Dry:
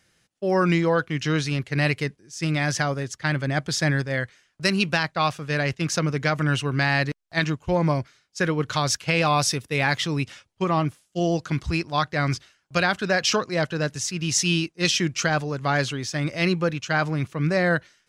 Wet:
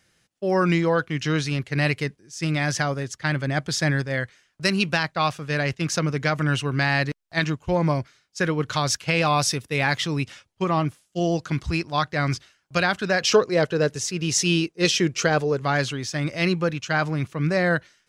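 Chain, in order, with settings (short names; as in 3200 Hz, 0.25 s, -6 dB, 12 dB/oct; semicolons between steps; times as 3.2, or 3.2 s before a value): 13.21–15.62 bell 440 Hz +10 dB 0.64 oct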